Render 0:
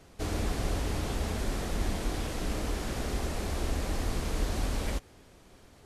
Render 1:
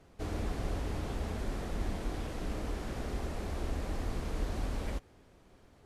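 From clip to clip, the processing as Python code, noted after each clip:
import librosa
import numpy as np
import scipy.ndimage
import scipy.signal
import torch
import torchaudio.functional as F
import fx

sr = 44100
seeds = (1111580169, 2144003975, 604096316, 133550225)

y = fx.high_shelf(x, sr, hz=3000.0, db=-8.0)
y = F.gain(torch.from_numpy(y), -4.0).numpy()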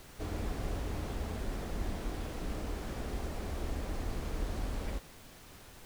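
y = fx.dmg_noise_colour(x, sr, seeds[0], colour='pink', level_db=-52.0)
y = F.gain(torch.from_numpy(y), -1.5).numpy()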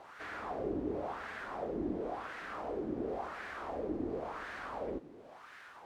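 y = fx.wah_lfo(x, sr, hz=0.94, low_hz=310.0, high_hz=1700.0, q=2.9)
y = F.gain(torch.from_numpy(y), 11.5).numpy()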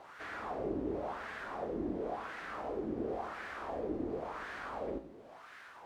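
y = fx.comb_fb(x, sr, f0_hz=55.0, decay_s=0.58, harmonics='all', damping=0.0, mix_pct=60)
y = F.gain(torch.from_numpy(y), 5.5).numpy()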